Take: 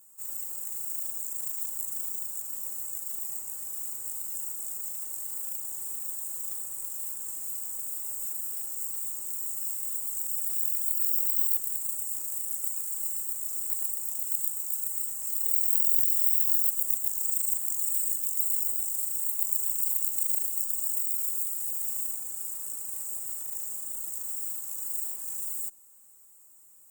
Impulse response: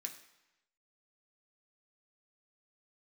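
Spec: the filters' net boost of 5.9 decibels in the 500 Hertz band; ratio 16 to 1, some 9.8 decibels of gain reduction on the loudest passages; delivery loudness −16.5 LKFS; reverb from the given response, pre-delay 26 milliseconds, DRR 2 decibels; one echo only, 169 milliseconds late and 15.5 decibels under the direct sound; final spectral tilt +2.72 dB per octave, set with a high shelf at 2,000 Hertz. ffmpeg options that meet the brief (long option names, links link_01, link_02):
-filter_complex "[0:a]equalizer=frequency=500:width_type=o:gain=7,highshelf=frequency=2000:gain=4,acompressor=threshold=-24dB:ratio=16,aecho=1:1:169:0.168,asplit=2[link_01][link_02];[1:a]atrim=start_sample=2205,adelay=26[link_03];[link_02][link_03]afir=irnorm=-1:irlink=0,volume=1dB[link_04];[link_01][link_04]amix=inputs=2:normalize=0,volume=8dB"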